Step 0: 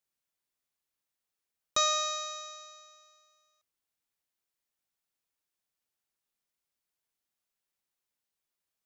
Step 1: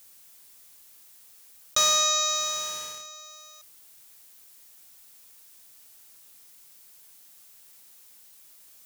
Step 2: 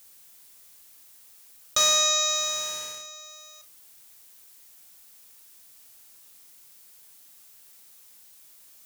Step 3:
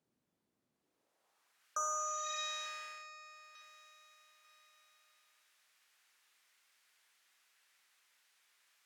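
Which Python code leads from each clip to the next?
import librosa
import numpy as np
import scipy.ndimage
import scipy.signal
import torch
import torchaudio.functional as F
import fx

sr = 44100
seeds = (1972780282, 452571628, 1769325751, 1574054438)

y1 = fx.high_shelf(x, sr, hz=4900.0, db=12.0)
y1 = fx.leveller(y1, sr, passes=2)
y1 = fx.env_flatten(y1, sr, amount_pct=50)
y1 = y1 * librosa.db_to_amplitude(-4.5)
y2 = fx.doubler(y1, sr, ms=41.0, db=-10.5)
y3 = fx.filter_sweep_bandpass(y2, sr, from_hz=220.0, to_hz=1800.0, start_s=0.71, end_s=1.68, q=1.3)
y3 = fx.echo_feedback(y3, sr, ms=894, feedback_pct=37, wet_db=-18.5)
y3 = fx.spec_repair(y3, sr, seeds[0], start_s=1.75, length_s=0.61, low_hz=1600.0, high_hz=5500.0, source='both')
y3 = y3 * librosa.db_to_amplitude(-4.0)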